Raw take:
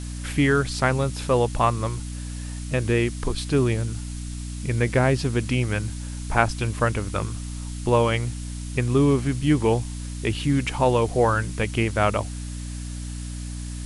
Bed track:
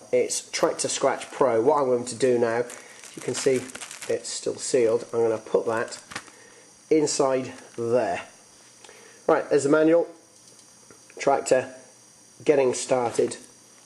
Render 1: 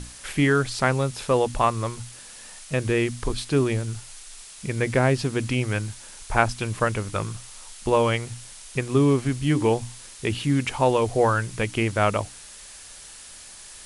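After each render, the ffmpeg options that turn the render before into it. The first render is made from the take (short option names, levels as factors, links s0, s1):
-af "bandreject=f=60:t=h:w=6,bandreject=f=120:t=h:w=6,bandreject=f=180:t=h:w=6,bandreject=f=240:t=h:w=6,bandreject=f=300:t=h:w=6"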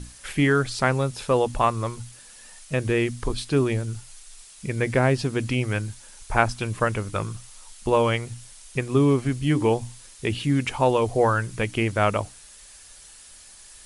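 -af "afftdn=nr=6:nf=-44"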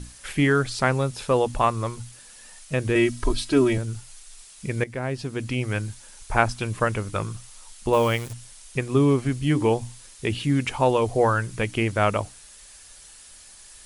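-filter_complex "[0:a]asettb=1/sr,asplit=3[s0][s1][s2];[s0]atrim=end=2.954[s3];[s1]atrim=start=2.95:end=3.78,asetpts=PTS-STARTPTS,afade=t=in:d=0.004:c=qsin,afade=t=out:st=0.826:d=0.004:c=qsin,aecho=1:1:3.1:0.9,atrim=end_sample=36603[s4];[s2]atrim=start=3.776[s5];[s3][s4]acrossfade=d=0.004:c1=hsin:c2=qsin[s6];[s6][s5]acrossfade=d=0.004:c1=qsin:c2=hsin,asettb=1/sr,asplit=3[s7][s8][s9];[s7]atrim=end=7.934[s10];[s8]atrim=start=7.93:end=8.33,asetpts=PTS-STARTPTS,afade=t=in:d=0.004:c=qsin,afade=t=out:st=0.396:d=0.004:c=qsin,acrusher=bits=7:dc=4:mix=0:aa=0.000001[s11];[s9]atrim=start=8.326[s12];[s10][s11]acrossfade=d=0.004:c1=hsin:c2=qsin[s13];[s13][s12]acrossfade=d=0.004:c1=qsin:c2=hsin,asplit=2[s14][s15];[s14]atrim=end=4.84,asetpts=PTS-STARTPTS,afade=t=out:st=4.836:d=0.004:c=hsin:silence=0.199526[s16];[s15]atrim=start=4.84,asetpts=PTS-STARTPTS,afade=t=in:d=1:silence=0.199526[s17];[s16][s17]concat=n=2:v=0:a=1"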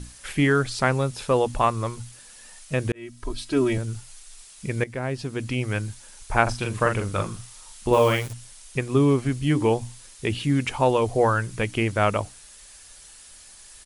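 -filter_complex "[0:a]asplit=3[s0][s1][s2];[s0]afade=t=out:st=6.46:d=0.02[s3];[s1]asplit=2[s4][s5];[s5]adelay=41,volume=0.631[s6];[s4][s6]amix=inputs=2:normalize=0,afade=t=in:st=6.46:d=0.02,afade=t=out:st=8.26:d=0.02[s7];[s2]afade=t=in:st=8.26:d=0.02[s8];[s3][s7][s8]amix=inputs=3:normalize=0,asplit=2[s9][s10];[s9]atrim=end=2.92,asetpts=PTS-STARTPTS,afade=t=out:st=2.916:d=0.004:c=hsin[s11];[s10]atrim=start=2.92,asetpts=PTS-STARTPTS,afade=t=in:d=0.93[s12];[s11][s12]concat=n=2:v=0:a=1"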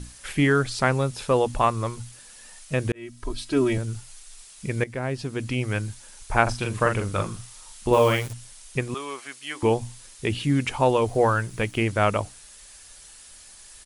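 -filter_complex "[0:a]asettb=1/sr,asplit=3[s0][s1][s2];[s0]atrim=end=8.944[s3];[s1]atrim=start=8.94:end=9.63,asetpts=PTS-STARTPTS,afade=t=in:d=0.004:c=qsin,afade=t=out:st=0.686:d=0.004:c=qsin,highpass=980[s4];[s2]atrim=start=9.626[s5];[s3][s4]acrossfade=d=0.004:c1=hsin:c2=qsin[s6];[s6][s5]acrossfade=d=0.004:c1=qsin:c2=hsin,asettb=1/sr,asplit=3[s7][s8][s9];[s7]atrim=end=11.044[s10];[s8]atrim=start=11.04:end=11.81,asetpts=PTS-STARTPTS,afade=t=in:d=0.004:c=qsin,afade=t=out:st=0.766:d=0.004:c=qsin,aeval=exprs='sgn(val(0))*max(abs(val(0))-0.00282,0)':c=same[s11];[s9]atrim=start=11.806[s12];[s10][s11]acrossfade=d=0.004:c1=hsin:c2=qsin[s13];[s13][s12]acrossfade=d=0.004:c1=qsin:c2=hsin"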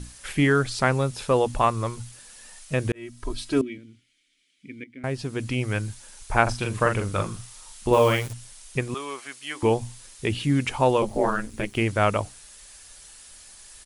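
-filter_complex "[0:a]asettb=1/sr,asplit=3[s0][s1][s2];[s0]atrim=end=3.614[s3];[s1]atrim=start=3.61:end=5.04,asetpts=PTS-STARTPTS,afade=t=in:d=0.004:c=qsin,afade=t=out:st=1.426:d=0.004:c=qsin,asplit=3[s4][s5][s6];[s4]bandpass=f=270:t=q:w=8,volume=1[s7];[s5]bandpass=f=2290:t=q:w=8,volume=0.501[s8];[s6]bandpass=f=3010:t=q:w=8,volume=0.355[s9];[s7][s8][s9]amix=inputs=3:normalize=0[s10];[s2]atrim=start=5.036[s11];[s3][s10]acrossfade=d=0.004:c1=hsin:c2=qsin[s12];[s12][s11]acrossfade=d=0.004:c1=qsin:c2=hsin,asettb=1/sr,asplit=3[s13][s14][s15];[s13]atrim=end=11.024[s16];[s14]atrim=start=11.02:end=11.75,asetpts=PTS-STARTPTS,afade=t=in:d=0.004:c=qsin,afade=t=out:st=0.726:d=0.004:c=qsin,aeval=exprs='val(0)*sin(2*PI*100*n/s)':c=same[s17];[s15]atrim=start=11.746[s18];[s16][s17]acrossfade=d=0.004:c1=hsin:c2=qsin[s19];[s19][s18]acrossfade=d=0.004:c1=qsin:c2=hsin"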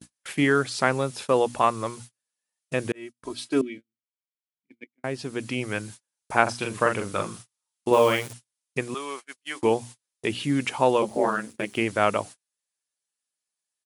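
-af "agate=range=0.0112:threshold=0.0158:ratio=16:detection=peak,highpass=190"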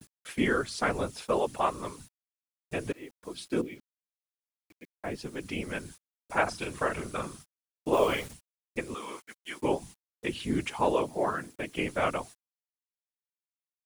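-af "afftfilt=real='hypot(re,im)*cos(2*PI*random(0))':imag='hypot(re,im)*sin(2*PI*random(1))':win_size=512:overlap=0.75,acrusher=bits=9:mix=0:aa=0.000001"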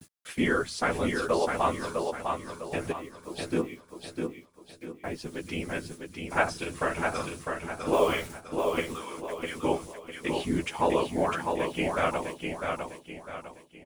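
-filter_complex "[0:a]asplit=2[s0][s1];[s1]adelay=12,volume=0.447[s2];[s0][s2]amix=inputs=2:normalize=0,aecho=1:1:653|1306|1959|2612|3265:0.596|0.226|0.086|0.0327|0.0124"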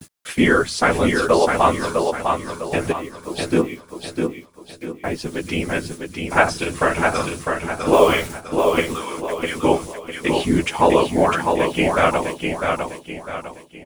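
-af "volume=3.35,alimiter=limit=0.891:level=0:latency=1"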